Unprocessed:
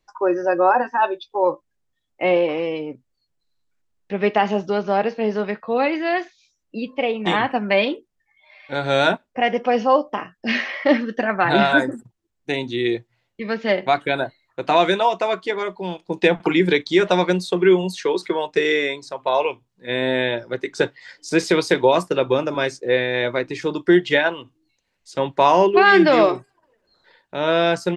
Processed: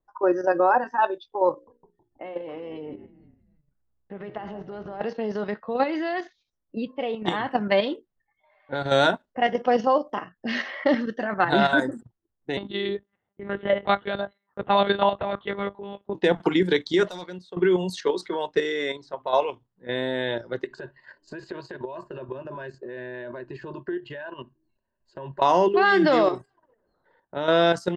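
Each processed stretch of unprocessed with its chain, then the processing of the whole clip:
1.51–5.01 compressor 12:1, threshold -24 dBFS + notches 60/120/180/240/300/360/420/480/540 Hz + frequency-shifting echo 0.16 s, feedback 53%, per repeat -63 Hz, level -14.5 dB
12.57–16.15 monotone LPC vocoder at 8 kHz 200 Hz + HPF 100 Hz
17.09–17.57 pre-emphasis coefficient 0.8 + hard clip -23 dBFS
20.64–25.42 ripple EQ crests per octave 1.4, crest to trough 13 dB + compressor, threshold -27 dBFS
whole clip: low-pass opened by the level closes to 1200 Hz, open at -16 dBFS; bell 2400 Hz -12.5 dB 0.21 oct; level quantiser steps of 9 dB

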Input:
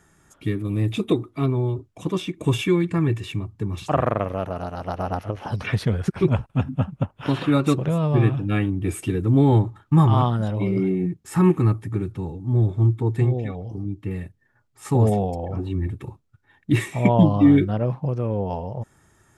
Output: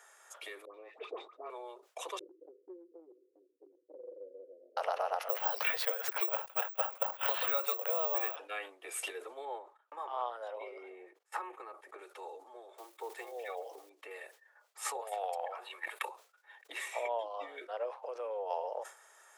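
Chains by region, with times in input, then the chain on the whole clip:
0.65–1.5 median filter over 9 samples + tape spacing loss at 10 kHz 35 dB + dispersion highs, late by 97 ms, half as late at 1100 Hz
2.19–4.77 Chebyshev low-pass 500 Hz, order 8 + fixed phaser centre 300 Hz, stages 8
5.29–8.36 HPF 400 Hz 24 dB/oct + careless resampling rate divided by 2×, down filtered, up zero stuff
9.45–11.99 high shelf 2800 Hz -11 dB + gate -44 dBFS, range -29 dB
12.78–13.91 block floating point 7-bit + HPF 110 Hz 6 dB/oct
15.01–16.06 HPF 1000 Hz + bell 5900 Hz -10 dB 0.79 oct + transient shaper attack +12 dB, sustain +4 dB
whole clip: compressor 6:1, threshold -29 dBFS; steep high-pass 480 Hz 48 dB/oct; sustainer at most 140 dB/s; gain +1.5 dB

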